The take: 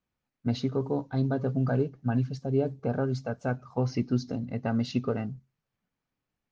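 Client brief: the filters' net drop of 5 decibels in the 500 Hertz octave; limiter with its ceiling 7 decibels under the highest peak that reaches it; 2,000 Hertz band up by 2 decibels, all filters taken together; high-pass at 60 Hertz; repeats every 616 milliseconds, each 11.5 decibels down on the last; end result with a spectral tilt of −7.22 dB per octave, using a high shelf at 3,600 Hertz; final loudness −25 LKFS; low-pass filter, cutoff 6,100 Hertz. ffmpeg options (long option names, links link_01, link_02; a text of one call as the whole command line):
ffmpeg -i in.wav -af "highpass=60,lowpass=6100,equalizer=frequency=500:width_type=o:gain=-6.5,equalizer=frequency=2000:width_type=o:gain=4.5,highshelf=frequency=3600:gain=-3.5,alimiter=limit=-22.5dB:level=0:latency=1,aecho=1:1:616|1232|1848:0.266|0.0718|0.0194,volume=8.5dB" out.wav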